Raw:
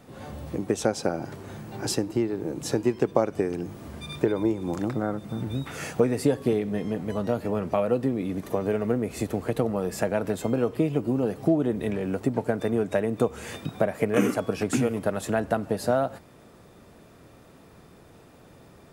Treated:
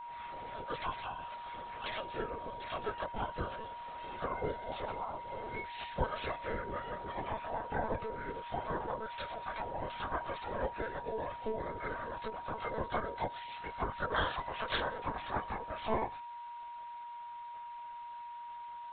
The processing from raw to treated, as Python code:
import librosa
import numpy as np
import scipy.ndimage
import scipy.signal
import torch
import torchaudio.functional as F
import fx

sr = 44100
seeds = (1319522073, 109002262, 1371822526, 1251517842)

y = fx.partial_stretch(x, sr, pct=80)
y = fx.spec_gate(y, sr, threshold_db=-15, keep='weak')
y = fx.lpc_monotone(y, sr, seeds[0], pitch_hz=220.0, order=16)
y = y + 10.0 ** (-46.0 / 20.0) * np.sin(2.0 * np.pi * 950.0 * np.arange(len(y)) / sr)
y = y * librosa.db_to_amplitude(3.0)